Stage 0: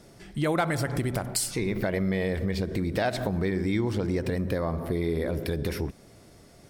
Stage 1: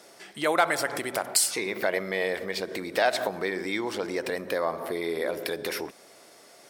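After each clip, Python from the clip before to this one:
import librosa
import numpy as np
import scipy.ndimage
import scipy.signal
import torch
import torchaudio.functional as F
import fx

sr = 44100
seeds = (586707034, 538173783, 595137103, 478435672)

y = scipy.signal.sosfilt(scipy.signal.butter(2, 540.0, 'highpass', fs=sr, output='sos'), x)
y = y * librosa.db_to_amplitude(5.5)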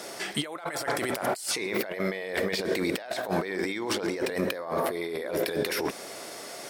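y = fx.over_compress(x, sr, threshold_db=-37.0, ratio=-1.0)
y = y * librosa.db_to_amplitude(5.5)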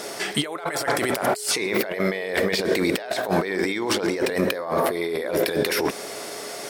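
y = x + 10.0 ** (-46.0 / 20.0) * np.sin(2.0 * np.pi * 420.0 * np.arange(len(x)) / sr)
y = y * librosa.db_to_amplitude(6.0)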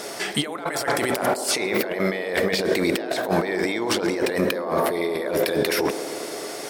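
y = fx.echo_wet_bandpass(x, sr, ms=106, feedback_pct=83, hz=490.0, wet_db=-12.0)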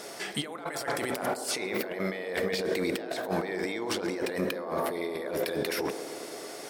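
y = fx.rev_fdn(x, sr, rt60_s=0.95, lf_ratio=1.0, hf_ratio=0.25, size_ms=12.0, drr_db=16.5)
y = y * librosa.db_to_amplitude(-8.5)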